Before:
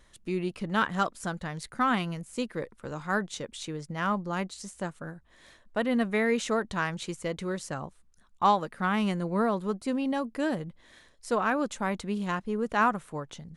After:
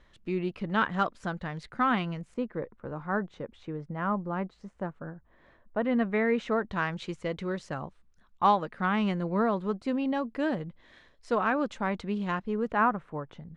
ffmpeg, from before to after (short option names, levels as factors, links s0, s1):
-af "asetnsamples=n=441:p=0,asendcmd='2.34 lowpass f 1400;5.84 lowpass f 2300;6.73 lowpass f 3700;12.72 lowpass f 1900',lowpass=3400"